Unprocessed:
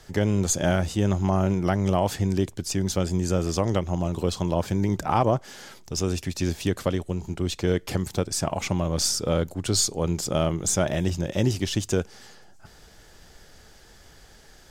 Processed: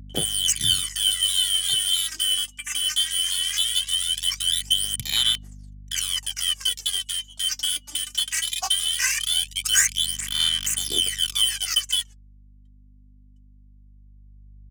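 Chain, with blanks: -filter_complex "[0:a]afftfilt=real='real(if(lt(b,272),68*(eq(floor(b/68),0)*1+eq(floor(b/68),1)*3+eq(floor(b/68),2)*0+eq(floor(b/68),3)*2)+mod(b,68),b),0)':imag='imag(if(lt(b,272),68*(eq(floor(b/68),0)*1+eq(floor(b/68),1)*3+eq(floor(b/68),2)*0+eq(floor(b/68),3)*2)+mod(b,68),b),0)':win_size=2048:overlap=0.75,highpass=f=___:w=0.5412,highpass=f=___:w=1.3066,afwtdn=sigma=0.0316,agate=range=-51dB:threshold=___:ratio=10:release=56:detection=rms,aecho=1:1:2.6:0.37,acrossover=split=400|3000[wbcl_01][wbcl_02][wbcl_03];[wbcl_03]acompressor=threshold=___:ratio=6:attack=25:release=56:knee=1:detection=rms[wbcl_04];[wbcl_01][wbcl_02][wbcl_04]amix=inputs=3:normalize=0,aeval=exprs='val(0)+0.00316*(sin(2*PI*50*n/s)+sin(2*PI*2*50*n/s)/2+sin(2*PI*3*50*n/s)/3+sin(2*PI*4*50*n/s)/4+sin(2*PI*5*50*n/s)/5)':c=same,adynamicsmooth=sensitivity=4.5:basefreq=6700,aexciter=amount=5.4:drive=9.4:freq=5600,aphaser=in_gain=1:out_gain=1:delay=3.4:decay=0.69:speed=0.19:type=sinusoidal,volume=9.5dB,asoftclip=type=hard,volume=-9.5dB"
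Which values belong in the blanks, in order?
80, 80, -57dB, -38dB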